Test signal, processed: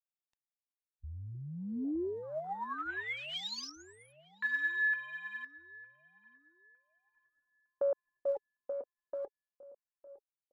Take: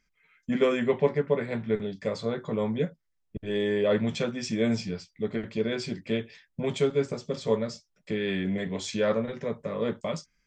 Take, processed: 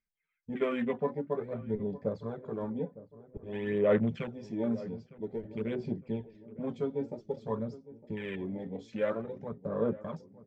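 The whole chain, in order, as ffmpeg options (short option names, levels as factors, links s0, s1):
-filter_complex "[0:a]lowpass=5600,afwtdn=0.0158,aphaser=in_gain=1:out_gain=1:delay=4.1:decay=0.52:speed=0.51:type=sinusoidal,asplit=2[s0][s1];[s1]adelay=908,lowpass=f=910:p=1,volume=0.158,asplit=2[s2][s3];[s3]adelay=908,lowpass=f=910:p=1,volume=0.53,asplit=2[s4][s5];[s5]adelay=908,lowpass=f=910:p=1,volume=0.53,asplit=2[s6][s7];[s7]adelay=908,lowpass=f=910:p=1,volume=0.53,asplit=2[s8][s9];[s9]adelay=908,lowpass=f=910:p=1,volume=0.53[s10];[s2][s4][s6][s8][s10]amix=inputs=5:normalize=0[s11];[s0][s11]amix=inputs=2:normalize=0,volume=0.447"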